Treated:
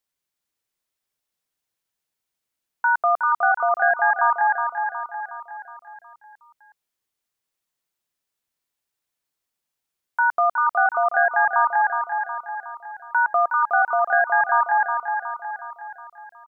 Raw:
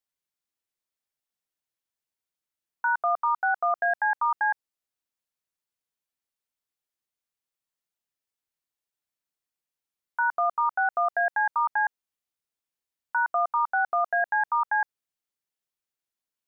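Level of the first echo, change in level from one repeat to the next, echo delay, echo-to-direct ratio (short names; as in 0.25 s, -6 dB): -6.0 dB, -5.5 dB, 0.366 s, -4.5 dB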